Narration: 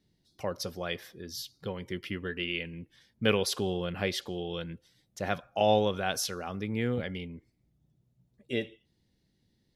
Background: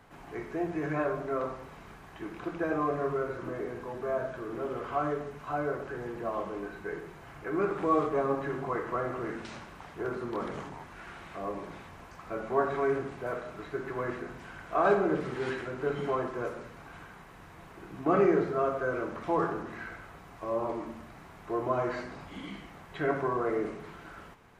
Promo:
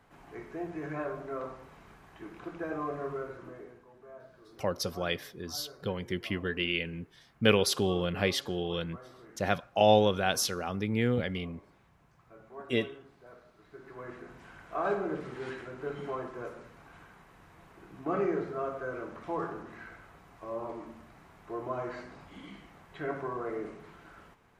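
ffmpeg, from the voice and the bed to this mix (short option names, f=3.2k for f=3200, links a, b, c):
-filter_complex "[0:a]adelay=4200,volume=2.5dB[a];[1:a]volume=7dB,afade=t=out:st=3.17:d=0.68:silence=0.223872,afade=t=in:st=13.62:d=0.83:silence=0.237137[b];[a][b]amix=inputs=2:normalize=0"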